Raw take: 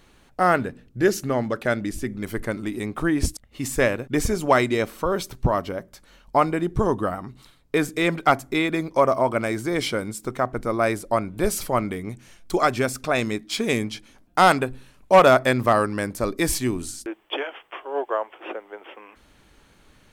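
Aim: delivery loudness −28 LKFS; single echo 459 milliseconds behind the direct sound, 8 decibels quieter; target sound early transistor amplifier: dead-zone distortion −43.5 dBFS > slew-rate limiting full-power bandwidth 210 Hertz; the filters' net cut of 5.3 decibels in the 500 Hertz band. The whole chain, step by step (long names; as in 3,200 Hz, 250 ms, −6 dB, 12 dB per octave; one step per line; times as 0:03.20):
parametric band 500 Hz −7 dB
single-tap delay 459 ms −8 dB
dead-zone distortion −43.5 dBFS
slew-rate limiting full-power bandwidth 210 Hz
level −1.5 dB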